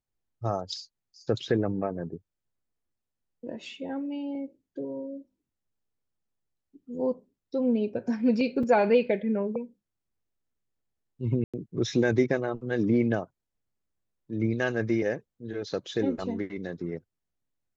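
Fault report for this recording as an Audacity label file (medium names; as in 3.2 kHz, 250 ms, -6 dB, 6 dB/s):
8.630000	8.630000	dropout 4.2 ms
11.440000	11.540000	dropout 96 ms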